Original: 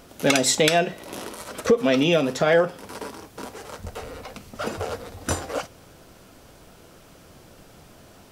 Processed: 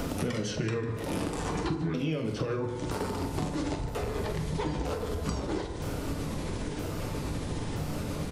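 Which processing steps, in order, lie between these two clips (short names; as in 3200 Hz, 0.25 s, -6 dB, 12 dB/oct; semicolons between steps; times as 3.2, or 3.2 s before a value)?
repeated pitch sweeps -8.5 st, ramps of 0.97 s; low shelf 250 Hz +11 dB; in parallel at +1.5 dB: limiter -15.5 dBFS, peak gain reduction 11.5 dB; on the sum: compressor 6:1, threshold -31 dBFS, peak gain reduction 21.5 dB; doubler 44 ms -12 dB; on a send: echo 0.15 s -17.5 dB; on the sum: FDN reverb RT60 1.3 s, low-frequency decay 0.75×, high-frequency decay 0.35×, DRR 5.5 dB; three-band squash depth 70%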